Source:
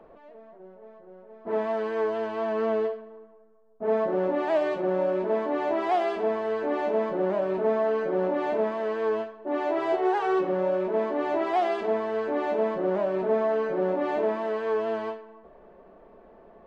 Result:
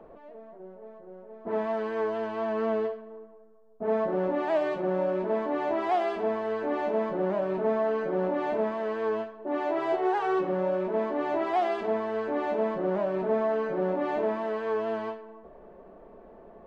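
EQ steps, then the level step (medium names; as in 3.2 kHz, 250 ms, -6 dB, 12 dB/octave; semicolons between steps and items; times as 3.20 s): dynamic bell 420 Hz, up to -5 dB, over -38 dBFS, Q 0.76; tilt shelf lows +3 dB, about 1.2 kHz; 0.0 dB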